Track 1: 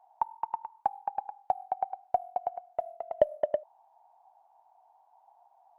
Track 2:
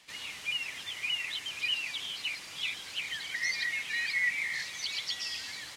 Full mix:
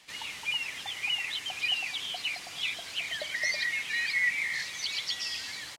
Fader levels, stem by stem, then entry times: -18.0, +2.0 dB; 0.00, 0.00 s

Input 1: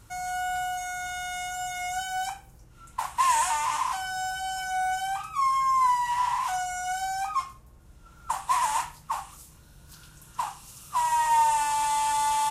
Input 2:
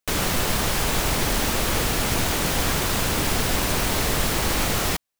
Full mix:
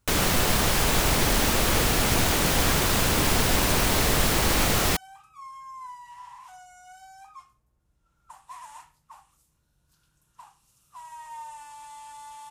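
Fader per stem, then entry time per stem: -18.5, +0.5 dB; 0.00, 0.00 s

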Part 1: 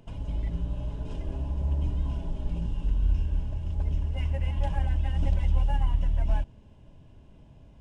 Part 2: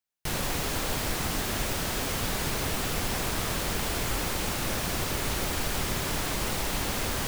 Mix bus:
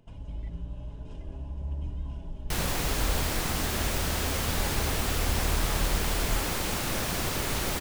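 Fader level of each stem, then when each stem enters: -6.5, 0.0 dB; 0.00, 2.25 s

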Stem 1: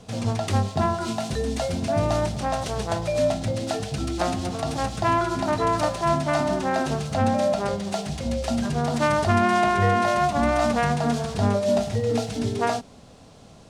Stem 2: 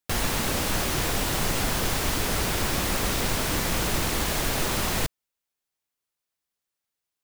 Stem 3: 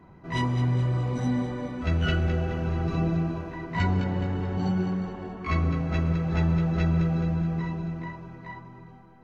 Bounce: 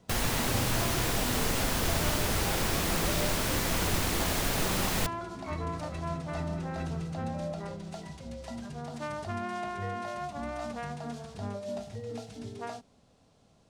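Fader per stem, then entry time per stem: -15.5, -3.5, -12.5 dB; 0.00, 0.00, 0.00 s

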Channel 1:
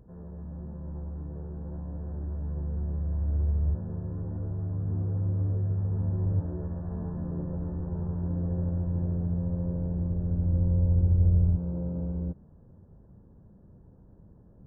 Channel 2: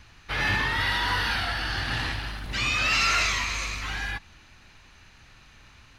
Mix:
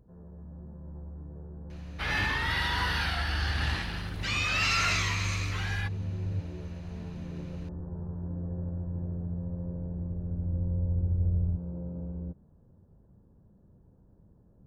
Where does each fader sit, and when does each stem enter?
-5.5, -4.0 dB; 0.00, 1.70 s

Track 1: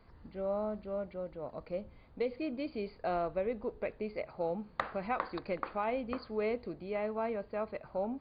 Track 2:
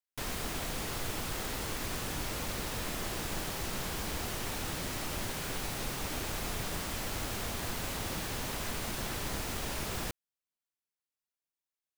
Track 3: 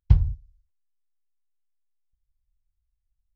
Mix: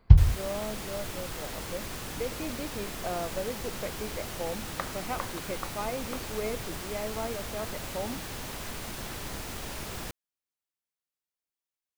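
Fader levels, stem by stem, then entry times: -0.5, -1.5, +2.5 dB; 0.00, 0.00, 0.00 s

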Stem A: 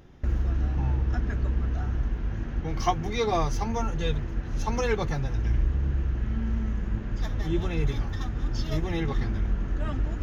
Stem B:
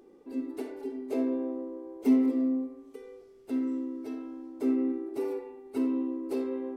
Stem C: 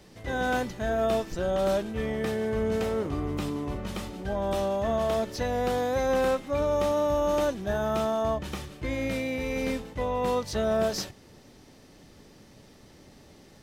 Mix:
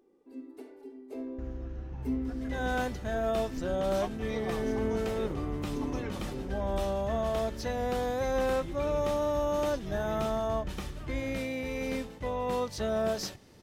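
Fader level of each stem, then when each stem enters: -14.0, -10.0, -4.0 dB; 1.15, 0.00, 2.25 s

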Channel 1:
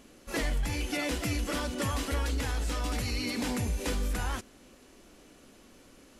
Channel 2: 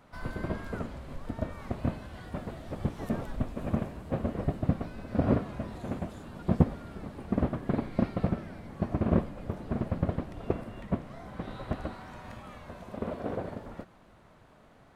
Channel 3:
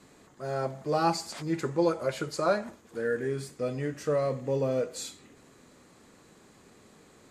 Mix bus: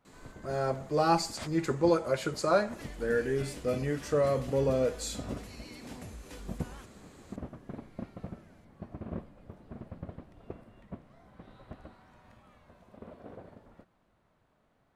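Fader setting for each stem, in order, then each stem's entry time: -15.5, -13.5, +0.5 dB; 2.45, 0.00, 0.05 s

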